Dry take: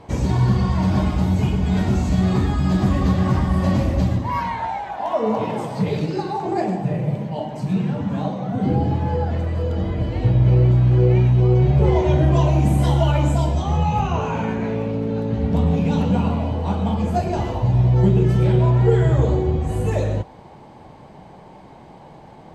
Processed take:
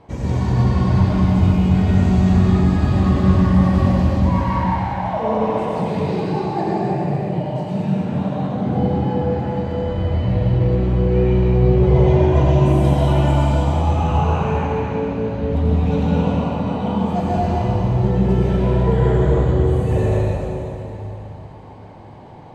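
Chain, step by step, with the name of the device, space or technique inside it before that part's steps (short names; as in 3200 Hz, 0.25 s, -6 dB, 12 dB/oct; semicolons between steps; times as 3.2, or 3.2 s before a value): swimming-pool hall (reverb RT60 3.1 s, pre-delay 81 ms, DRR -6 dB; high shelf 4700 Hz -7 dB); gain -4.5 dB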